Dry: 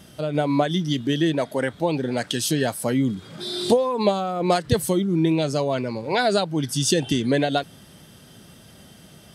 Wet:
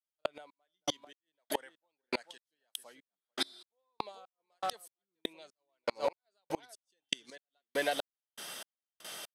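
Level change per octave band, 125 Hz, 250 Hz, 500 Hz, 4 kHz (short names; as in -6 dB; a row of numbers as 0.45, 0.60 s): -35.0, -25.5, -17.5, -12.0 dB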